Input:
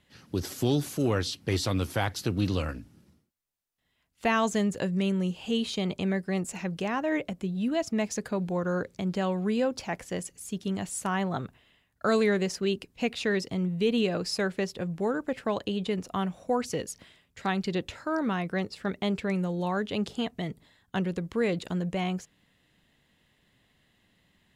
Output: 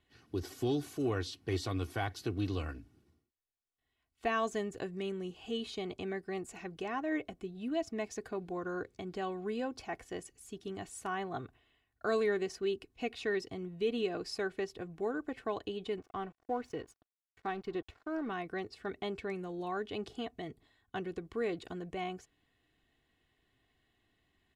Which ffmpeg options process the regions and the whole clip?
-filter_complex "[0:a]asettb=1/sr,asplit=3[s0][s1][s2];[s0]atrim=end=15.984[s3];[s1]atrim=start=15.98:end=18.3,asetpts=PTS-STARTPTS,afade=t=in:d=0.004:c=qsin,afade=t=out:st=2.316:d=0.004:c=qsin,aeval=exprs='sgn(val(0))*max(abs(val(0))-0.00531,0)':c=same,highshelf=f=3700:g=-11[s4];[s2]atrim=start=18.296[s5];[s3][s4]acrossfade=d=0.004:c1=hsin:c2=qsin[s6];[s6][s5]acrossfade=d=0.004:c1=qsin:c2=hsin,highshelf=f=4200:g=-7,aecho=1:1:2.7:0.61,volume=0.398"

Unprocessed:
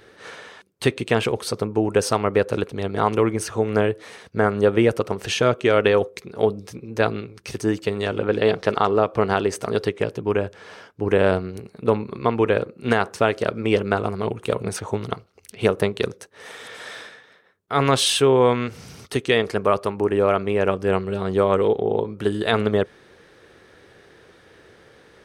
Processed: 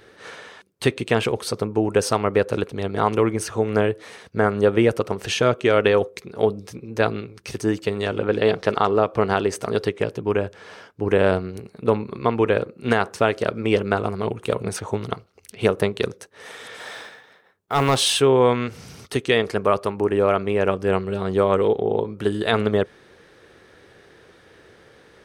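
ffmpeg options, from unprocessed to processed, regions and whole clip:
-filter_complex "[0:a]asettb=1/sr,asplit=3[s0][s1][s2];[s0]atrim=end=16.804[s3];[s1]atrim=start=16.8:end=18.18,asetpts=PTS-STARTPTS,afade=t=in:d=0.004:c=qsin,afade=t=out:st=1.376:d=0.004:c=qsin,equalizer=f=820:t=o:w=0.51:g=5.5,acrusher=bits=7:mode=log:mix=0:aa=0.000001,asoftclip=type=hard:threshold=0.282[s4];[s2]atrim=start=18.176[s5];[s3][s4]acrossfade=d=0.004:c1=hsin:c2=qsin[s6];[s6][s5]acrossfade=d=0.004:c1=qsin:c2=hsin"

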